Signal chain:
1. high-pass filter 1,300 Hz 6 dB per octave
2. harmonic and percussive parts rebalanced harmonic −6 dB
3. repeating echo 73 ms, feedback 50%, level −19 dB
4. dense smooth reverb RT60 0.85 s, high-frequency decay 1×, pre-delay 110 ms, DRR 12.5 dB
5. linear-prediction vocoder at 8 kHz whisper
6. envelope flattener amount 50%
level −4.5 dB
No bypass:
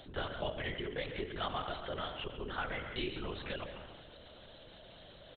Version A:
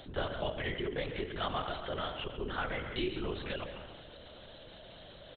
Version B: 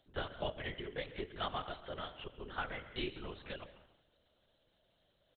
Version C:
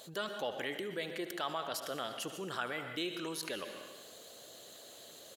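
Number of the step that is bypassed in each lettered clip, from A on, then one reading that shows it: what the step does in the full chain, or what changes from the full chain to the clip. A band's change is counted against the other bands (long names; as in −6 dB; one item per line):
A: 2, 250 Hz band +2.0 dB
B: 6, change in crest factor +2.0 dB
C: 5, 125 Hz band −8.0 dB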